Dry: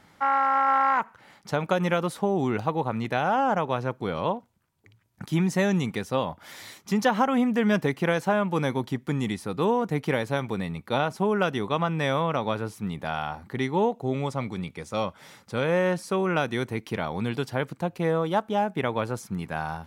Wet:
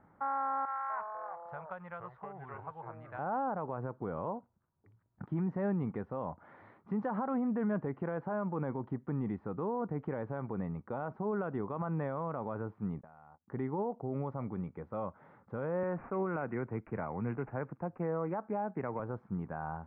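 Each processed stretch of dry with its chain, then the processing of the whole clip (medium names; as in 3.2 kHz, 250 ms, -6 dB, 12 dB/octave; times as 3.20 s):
0.65–3.19 s: amplifier tone stack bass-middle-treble 10-0-10 + ever faster or slower copies 246 ms, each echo -4 st, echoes 2, each echo -6 dB
13.01–13.48 s: low-pass 3.1 kHz + gate -37 dBFS, range -40 dB + compression 16:1, threshold -45 dBFS
15.83–19.00 s: careless resampling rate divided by 8×, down none, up filtered + treble shelf 2.6 kHz +9.5 dB + three bands expanded up and down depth 40%
whole clip: low-pass 1.4 kHz 24 dB/octave; peak limiter -21 dBFS; trim -5.5 dB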